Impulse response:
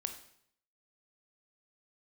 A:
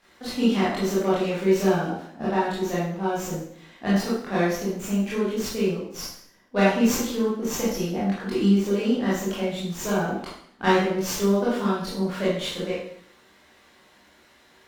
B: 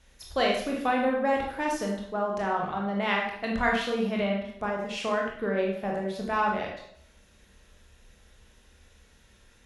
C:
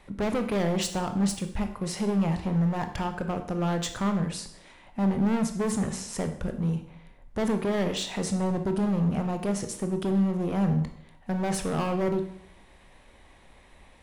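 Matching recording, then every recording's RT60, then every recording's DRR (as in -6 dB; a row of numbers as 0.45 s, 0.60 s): C; 0.65 s, 0.65 s, 0.65 s; -10.0 dB, -2.0 dB, 6.5 dB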